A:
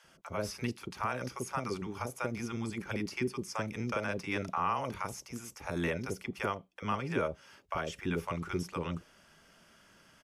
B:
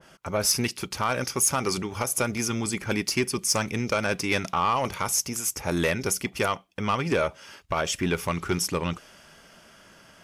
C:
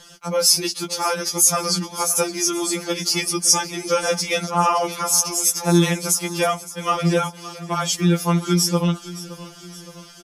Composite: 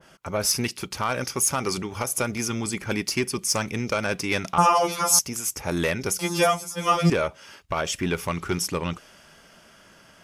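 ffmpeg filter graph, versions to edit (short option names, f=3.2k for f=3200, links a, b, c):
-filter_complex "[2:a]asplit=2[a][b];[1:a]asplit=3[c][d][e];[c]atrim=end=4.582[f];[a]atrim=start=4.578:end=5.192[g];[d]atrim=start=5.188:end=6.192[h];[b]atrim=start=6.188:end=7.102[i];[e]atrim=start=7.098[j];[f][g]acrossfade=d=0.004:c1=hsin:c2=hsin[k];[k][h]acrossfade=d=0.004:c1=hsin:c2=hsin[l];[l][i]acrossfade=d=0.004:c1=hsin:c2=hsin[m];[m][j]acrossfade=d=0.004:c1=hsin:c2=hsin"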